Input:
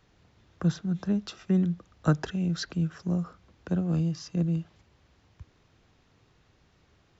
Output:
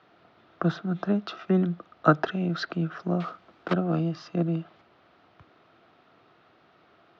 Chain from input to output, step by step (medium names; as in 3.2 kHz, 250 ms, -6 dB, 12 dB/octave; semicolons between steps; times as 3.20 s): 3.20–3.75 s: block-companded coder 3-bit; cabinet simulation 210–4100 Hz, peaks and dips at 340 Hz +4 dB, 680 Hz +10 dB, 1.3 kHz +10 dB; trim +4 dB